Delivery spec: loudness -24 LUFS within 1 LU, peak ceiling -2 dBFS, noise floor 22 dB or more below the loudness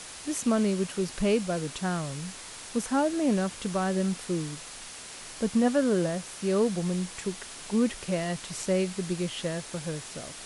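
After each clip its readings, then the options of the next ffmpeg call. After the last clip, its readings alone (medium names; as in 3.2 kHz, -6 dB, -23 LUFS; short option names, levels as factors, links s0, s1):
noise floor -43 dBFS; noise floor target -51 dBFS; loudness -29.0 LUFS; peak level -11.5 dBFS; loudness target -24.0 LUFS
-> -af "afftdn=nr=8:nf=-43"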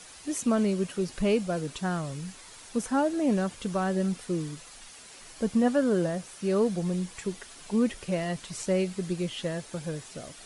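noise floor -49 dBFS; noise floor target -51 dBFS
-> -af "afftdn=nr=6:nf=-49"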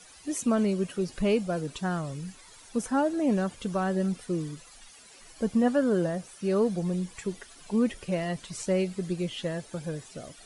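noise floor -52 dBFS; loudness -29.0 LUFS; peak level -11.5 dBFS; loudness target -24.0 LUFS
-> -af "volume=1.78"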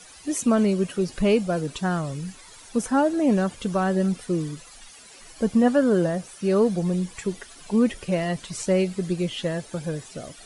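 loudness -24.0 LUFS; peak level -6.5 dBFS; noise floor -47 dBFS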